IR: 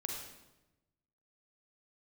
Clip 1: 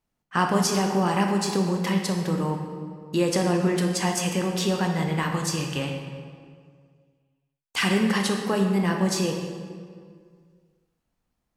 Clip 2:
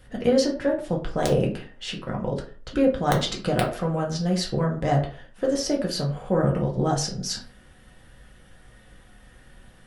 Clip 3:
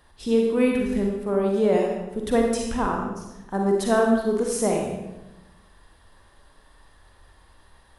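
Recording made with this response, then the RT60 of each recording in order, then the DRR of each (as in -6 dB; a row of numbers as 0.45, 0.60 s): 3; 2.0, 0.45, 1.0 s; 2.0, -1.5, 0.5 dB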